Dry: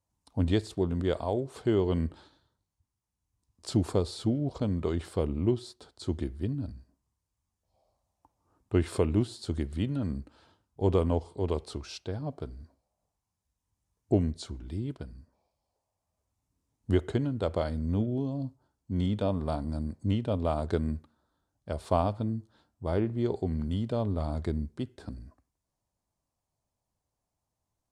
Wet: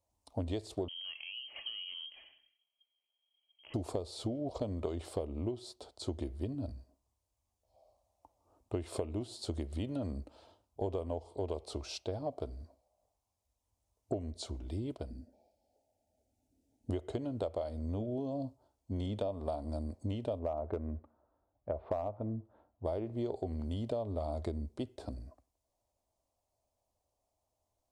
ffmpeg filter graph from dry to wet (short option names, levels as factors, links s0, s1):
-filter_complex "[0:a]asettb=1/sr,asplit=3[s0][s1][s2];[s0]atrim=end=0.884[s3];[s1]atrim=start=0.88:end=3.74,asetpts=PTS-STARTPTS,afade=t=in:d=0.004:c=qsin,afade=t=out:st=2.856:d=0.004:c=qsin,acompressor=threshold=0.01:ratio=6:attack=3.2:release=140:knee=1:detection=peak,aphaser=in_gain=1:out_gain=1:delay=3.6:decay=0.3:speed=1.4:type=sinusoidal,lowpass=f=2800:t=q:w=0.5098,lowpass=f=2800:t=q:w=0.6013,lowpass=f=2800:t=q:w=0.9,lowpass=f=2800:t=q:w=2.563,afreqshift=-3300[s4];[s2]atrim=start=3.736[s5];[s3][s4]acrossfade=d=0.004:c1=hsin:c2=qsin[s6];[s6][s5]acrossfade=d=0.004:c1=qsin:c2=hsin,asettb=1/sr,asplit=3[s7][s8][s9];[s7]atrim=end=15.104[s10];[s8]atrim=start=15.1:end=16.9,asetpts=PTS-STARTPTS,afade=t=in:d=0.004:c=qsin,afade=t=out:st=1.796:d=0.004:c=qsin,asuperstop=centerf=1100:order=20:qfactor=2.4,equalizer=f=250:t=o:w=1.1:g=13[s11];[s9]atrim=start=16.896[s12];[s10][s11]acrossfade=d=0.004:c1=hsin:c2=qsin[s13];[s13][s12]acrossfade=d=0.004:c1=qsin:c2=hsin,asettb=1/sr,asplit=3[s14][s15][s16];[s14]atrim=end=20.394[s17];[s15]atrim=start=20.39:end=22.85,asetpts=PTS-STARTPTS,afade=t=in:d=0.004:c=qsin,afade=t=out:st=2.456:d=0.004:c=qsin,lowpass=f=1900:w=0.5412,lowpass=f=1900:w=1.3066,aeval=exprs='clip(val(0),-1,0.126)':c=same[s18];[s16]atrim=start=22.846[s19];[s17][s18]acrossfade=d=0.004:c1=hsin:c2=qsin[s20];[s20][s19]acrossfade=d=0.004:c1=qsin:c2=hsin,equalizer=f=160:t=o:w=0.67:g=-12,equalizer=f=630:t=o:w=0.67:g=9,equalizer=f=1600:t=o:w=0.67:g=-9,acompressor=threshold=0.0251:ratio=12"